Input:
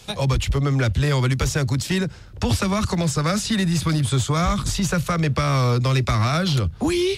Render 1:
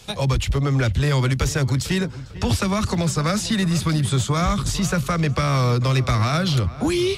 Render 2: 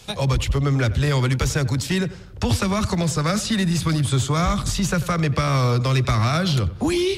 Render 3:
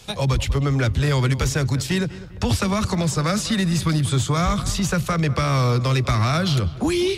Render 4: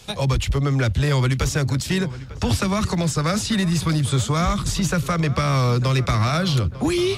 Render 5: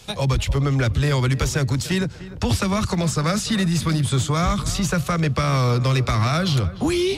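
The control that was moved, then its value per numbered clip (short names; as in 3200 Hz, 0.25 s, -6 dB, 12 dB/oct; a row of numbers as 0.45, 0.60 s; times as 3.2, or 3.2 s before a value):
darkening echo, time: 448, 92, 199, 898, 298 ms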